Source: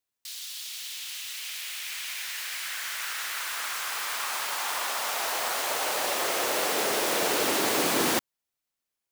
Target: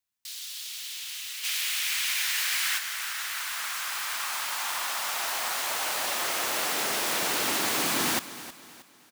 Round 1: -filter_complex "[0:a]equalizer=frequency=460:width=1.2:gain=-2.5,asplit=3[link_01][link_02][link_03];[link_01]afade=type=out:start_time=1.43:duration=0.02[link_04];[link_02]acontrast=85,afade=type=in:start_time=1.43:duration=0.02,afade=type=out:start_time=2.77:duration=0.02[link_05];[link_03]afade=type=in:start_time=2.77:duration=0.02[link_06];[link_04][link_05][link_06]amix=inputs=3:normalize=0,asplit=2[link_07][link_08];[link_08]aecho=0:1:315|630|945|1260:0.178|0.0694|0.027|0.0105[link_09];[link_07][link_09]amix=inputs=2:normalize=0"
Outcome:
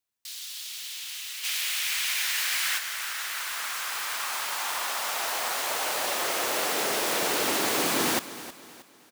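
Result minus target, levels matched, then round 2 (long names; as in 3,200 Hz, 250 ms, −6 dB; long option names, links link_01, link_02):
500 Hz band +4.5 dB
-filter_complex "[0:a]equalizer=frequency=460:width=1.2:gain=-9,asplit=3[link_01][link_02][link_03];[link_01]afade=type=out:start_time=1.43:duration=0.02[link_04];[link_02]acontrast=85,afade=type=in:start_time=1.43:duration=0.02,afade=type=out:start_time=2.77:duration=0.02[link_05];[link_03]afade=type=in:start_time=2.77:duration=0.02[link_06];[link_04][link_05][link_06]amix=inputs=3:normalize=0,asplit=2[link_07][link_08];[link_08]aecho=0:1:315|630|945|1260:0.178|0.0694|0.027|0.0105[link_09];[link_07][link_09]amix=inputs=2:normalize=0"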